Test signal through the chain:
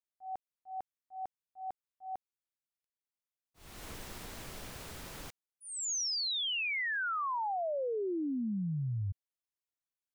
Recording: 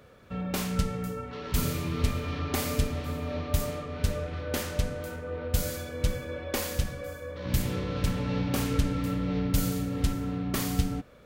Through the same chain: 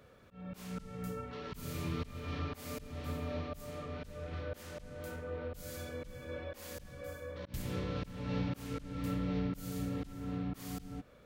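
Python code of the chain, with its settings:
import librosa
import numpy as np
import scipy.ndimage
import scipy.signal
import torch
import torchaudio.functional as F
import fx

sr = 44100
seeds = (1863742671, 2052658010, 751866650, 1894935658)

y = fx.auto_swell(x, sr, attack_ms=308.0)
y = y * librosa.db_to_amplitude(-5.5)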